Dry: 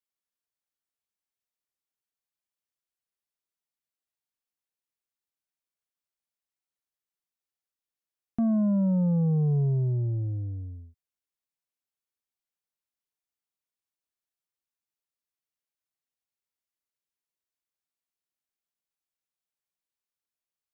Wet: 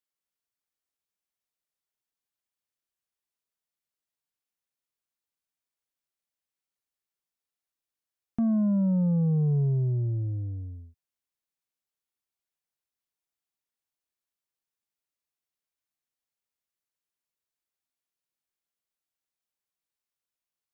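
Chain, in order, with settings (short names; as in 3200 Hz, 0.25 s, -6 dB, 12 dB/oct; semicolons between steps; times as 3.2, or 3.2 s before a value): dynamic EQ 730 Hz, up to -4 dB, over -47 dBFS, Q 1.4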